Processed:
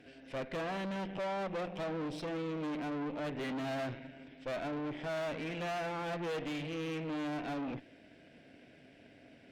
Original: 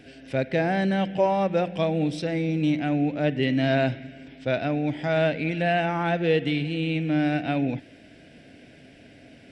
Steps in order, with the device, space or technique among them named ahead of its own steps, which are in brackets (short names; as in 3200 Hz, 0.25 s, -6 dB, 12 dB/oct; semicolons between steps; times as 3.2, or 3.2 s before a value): tube preamp driven hard (tube stage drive 32 dB, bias 0.8; low shelf 190 Hz -7 dB; high shelf 4100 Hz -8.5 dB); gain -1.5 dB